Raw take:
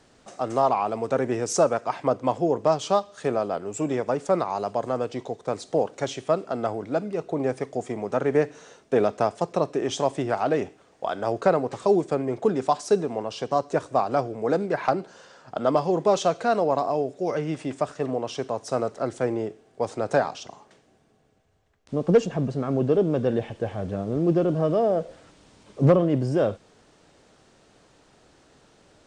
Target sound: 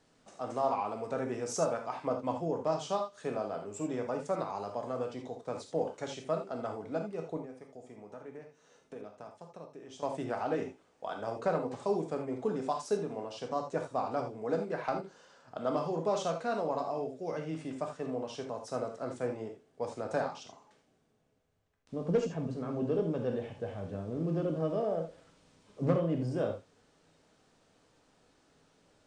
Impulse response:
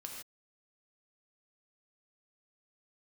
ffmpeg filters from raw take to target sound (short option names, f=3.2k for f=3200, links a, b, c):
-filter_complex "[0:a]asettb=1/sr,asplit=3[a][b][c];[a]atrim=end=7.374[d];[b]atrim=start=7.37:end=10.03,asetpts=PTS-STARTPTS,afade=t=in:d=0.004:c=qsin,afade=t=out:st=2.656:d=0.004:c=qsin,acompressor=threshold=-41dB:ratio=2.5[e];[c]atrim=start=10.026[f];[d][e]acrossfade=d=0.004:c1=hsin:c2=qsin[g];[g][f]acrossfade=d=0.004:c1=qsin:c2=hsin[h];[1:a]atrim=start_sample=2205,atrim=end_sample=3969[i];[h][i]afir=irnorm=-1:irlink=0,volume=-5.5dB"